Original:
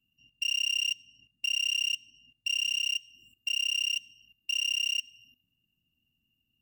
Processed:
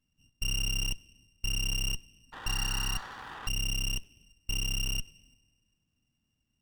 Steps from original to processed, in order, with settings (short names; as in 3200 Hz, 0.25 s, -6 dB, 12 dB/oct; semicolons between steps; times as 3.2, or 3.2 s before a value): band-limited delay 0.1 s, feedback 71%, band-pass 690 Hz, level -10.5 dB; painted sound noise, 2.32–3.49, 740–2000 Hz -44 dBFS; running maximum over 9 samples; gain +1 dB